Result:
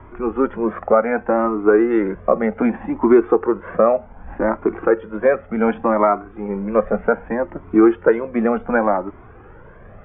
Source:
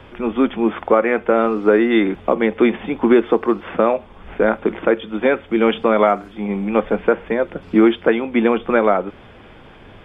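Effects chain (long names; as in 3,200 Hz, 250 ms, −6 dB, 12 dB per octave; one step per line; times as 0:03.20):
low-pass filter 1,700 Hz 24 dB per octave
flanger whose copies keep moving one way rising 0.66 Hz
level +4.5 dB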